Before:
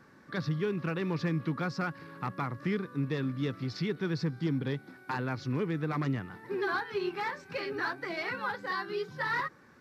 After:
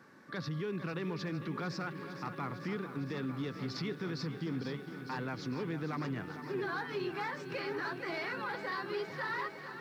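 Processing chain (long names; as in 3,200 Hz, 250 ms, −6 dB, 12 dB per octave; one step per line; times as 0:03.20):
Bessel high-pass filter 160 Hz
brickwall limiter −30 dBFS, peak gain reduction 8 dB
feedback echo at a low word length 454 ms, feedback 80%, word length 11 bits, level −11 dB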